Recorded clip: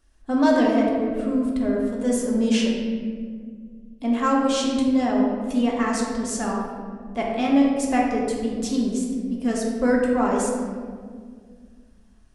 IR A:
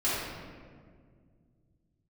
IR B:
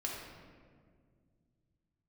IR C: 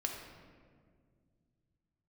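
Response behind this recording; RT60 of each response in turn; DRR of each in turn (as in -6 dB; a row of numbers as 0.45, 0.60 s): B; 1.9, 1.9, 1.9 s; -11.5, -3.0, 1.0 dB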